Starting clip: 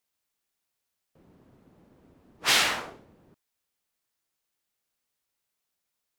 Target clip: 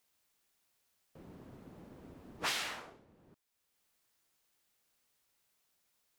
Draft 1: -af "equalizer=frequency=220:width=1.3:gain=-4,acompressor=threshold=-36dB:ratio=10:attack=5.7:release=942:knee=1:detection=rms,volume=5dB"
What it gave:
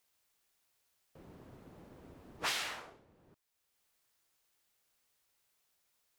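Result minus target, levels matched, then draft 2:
250 Hz band −3.0 dB
-af "acompressor=threshold=-36dB:ratio=10:attack=5.7:release=942:knee=1:detection=rms,volume=5dB"

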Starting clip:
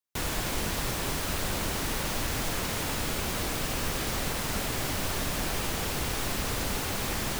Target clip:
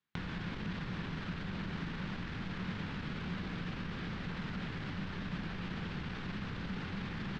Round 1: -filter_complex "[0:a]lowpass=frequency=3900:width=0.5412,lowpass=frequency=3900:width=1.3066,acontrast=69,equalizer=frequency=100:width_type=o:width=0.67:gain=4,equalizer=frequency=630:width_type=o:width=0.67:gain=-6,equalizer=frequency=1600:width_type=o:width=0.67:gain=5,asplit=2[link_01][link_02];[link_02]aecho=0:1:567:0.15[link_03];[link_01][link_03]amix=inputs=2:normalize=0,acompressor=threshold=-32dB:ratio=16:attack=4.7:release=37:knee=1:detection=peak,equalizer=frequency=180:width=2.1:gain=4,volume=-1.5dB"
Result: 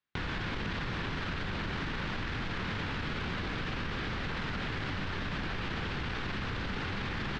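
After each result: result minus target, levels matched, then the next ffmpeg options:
downward compressor: peak gain reduction −8 dB; 250 Hz band −4.0 dB
-filter_complex "[0:a]lowpass=frequency=3900:width=0.5412,lowpass=frequency=3900:width=1.3066,acontrast=69,equalizer=frequency=100:width_type=o:width=0.67:gain=4,equalizer=frequency=630:width_type=o:width=0.67:gain=-6,equalizer=frequency=1600:width_type=o:width=0.67:gain=5,asplit=2[link_01][link_02];[link_02]aecho=0:1:567:0.15[link_03];[link_01][link_03]amix=inputs=2:normalize=0,acompressor=threshold=-40.5dB:ratio=16:attack=4.7:release=37:knee=1:detection=peak,equalizer=frequency=180:width=2.1:gain=4,volume=-1.5dB"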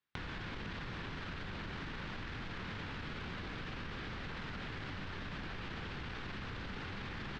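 250 Hz band −4.0 dB
-filter_complex "[0:a]lowpass=frequency=3900:width=0.5412,lowpass=frequency=3900:width=1.3066,acontrast=69,equalizer=frequency=100:width_type=o:width=0.67:gain=4,equalizer=frequency=630:width_type=o:width=0.67:gain=-6,equalizer=frequency=1600:width_type=o:width=0.67:gain=5,asplit=2[link_01][link_02];[link_02]aecho=0:1:567:0.15[link_03];[link_01][link_03]amix=inputs=2:normalize=0,acompressor=threshold=-40.5dB:ratio=16:attack=4.7:release=37:knee=1:detection=peak,equalizer=frequency=180:width=2.1:gain=15,volume=-1.5dB"

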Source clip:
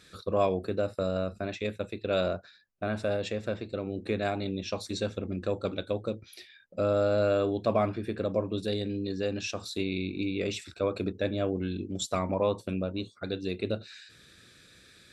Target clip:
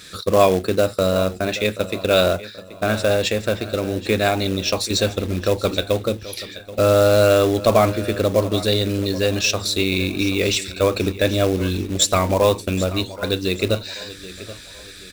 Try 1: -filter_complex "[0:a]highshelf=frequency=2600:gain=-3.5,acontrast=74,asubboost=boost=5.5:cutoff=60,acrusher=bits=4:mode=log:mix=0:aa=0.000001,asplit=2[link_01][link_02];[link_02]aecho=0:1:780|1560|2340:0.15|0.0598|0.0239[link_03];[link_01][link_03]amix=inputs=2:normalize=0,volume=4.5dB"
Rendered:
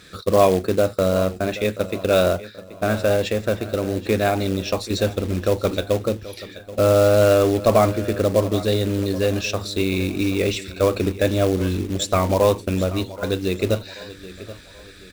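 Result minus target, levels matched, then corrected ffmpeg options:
4,000 Hz band −5.5 dB
-filter_complex "[0:a]highshelf=frequency=2600:gain=7.5,acontrast=74,asubboost=boost=5.5:cutoff=60,acrusher=bits=4:mode=log:mix=0:aa=0.000001,asplit=2[link_01][link_02];[link_02]aecho=0:1:780|1560|2340:0.15|0.0598|0.0239[link_03];[link_01][link_03]amix=inputs=2:normalize=0,volume=4.5dB"

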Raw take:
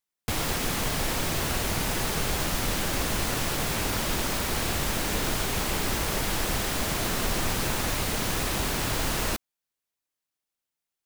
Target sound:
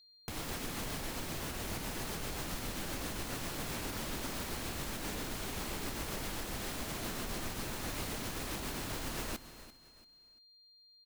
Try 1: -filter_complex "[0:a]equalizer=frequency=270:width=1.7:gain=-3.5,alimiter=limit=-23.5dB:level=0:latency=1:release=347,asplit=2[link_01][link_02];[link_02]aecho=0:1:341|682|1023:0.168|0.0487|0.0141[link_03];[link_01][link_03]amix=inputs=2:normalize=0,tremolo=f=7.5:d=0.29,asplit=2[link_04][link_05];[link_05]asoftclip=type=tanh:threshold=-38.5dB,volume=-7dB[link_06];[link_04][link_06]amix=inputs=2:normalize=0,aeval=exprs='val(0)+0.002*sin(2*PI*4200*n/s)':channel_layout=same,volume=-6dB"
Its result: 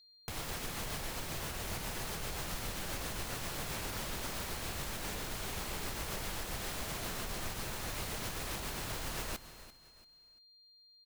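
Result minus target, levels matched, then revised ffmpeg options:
250 Hz band −4.0 dB
-filter_complex "[0:a]equalizer=frequency=270:width=1.7:gain=3.5,alimiter=limit=-23.5dB:level=0:latency=1:release=347,asplit=2[link_01][link_02];[link_02]aecho=0:1:341|682|1023:0.168|0.0487|0.0141[link_03];[link_01][link_03]amix=inputs=2:normalize=0,tremolo=f=7.5:d=0.29,asplit=2[link_04][link_05];[link_05]asoftclip=type=tanh:threshold=-38.5dB,volume=-7dB[link_06];[link_04][link_06]amix=inputs=2:normalize=0,aeval=exprs='val(0)+0.002*sin(2*PI*4200*n/s)':channel_layout=same,volume=-6dB"

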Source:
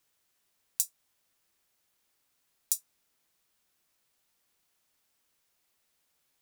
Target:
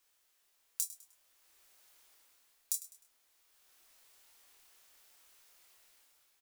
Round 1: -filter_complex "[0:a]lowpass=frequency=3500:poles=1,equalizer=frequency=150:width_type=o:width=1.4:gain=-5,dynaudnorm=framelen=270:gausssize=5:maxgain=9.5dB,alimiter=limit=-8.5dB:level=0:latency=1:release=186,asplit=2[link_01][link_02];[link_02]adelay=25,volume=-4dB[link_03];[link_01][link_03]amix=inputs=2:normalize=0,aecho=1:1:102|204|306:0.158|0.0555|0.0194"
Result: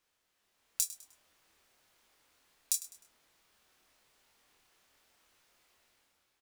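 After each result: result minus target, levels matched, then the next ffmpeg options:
125 Hz band +5.0 dB; 4,000 Hz band +3.5 dB
-filter_complex "[0:a]lowpass=frequency=3500:poles=1,equalizer=frequency=150:width_type=o:width=1.4:gain=-17,dynaudnorm=framelen=270:gausssize=5:maxgain=9.5dB,alimiter=limit=-8.5dB:level=0:latency=1:release=186,asplit=2[link_01][link_02];[link_02]adelay=25,volume=-4dB[link_03];[link_01][link_03]amix=inputs=2:normalize=0,aecho=1:1:102|204|306:0.158|0.0555|0.0194"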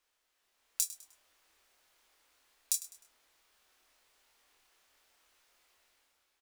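4,000 Hz band +3.5 dB
-filter_complex "[0:a]equalizer=frequency=150:width_type=o:width=1.4:gain=-17,dynaudnorm=framelen=270:gausssize=5:maxgain=9.5dB,alimiter=limit=-8.5dB:level=0:latency=1:release=186,asplit=2[link_01][link_02];[link_02]adelay=25,volume=-4dB[link_03];[link_01][link_03]amix=inputs=2:normalize=0,aecho=1:1:102|204|306:0.158|0.0555|0.0194"

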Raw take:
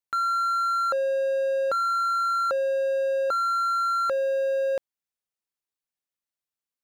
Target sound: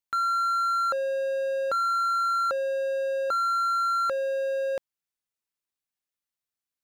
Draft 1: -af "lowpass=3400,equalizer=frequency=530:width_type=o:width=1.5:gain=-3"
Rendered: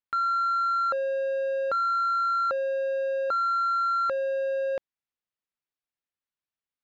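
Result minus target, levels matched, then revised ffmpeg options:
4,000 Hz band −5.0 dB
-af "equalizer=frequency=530:width_type=o:width=1.5:gain=-3"

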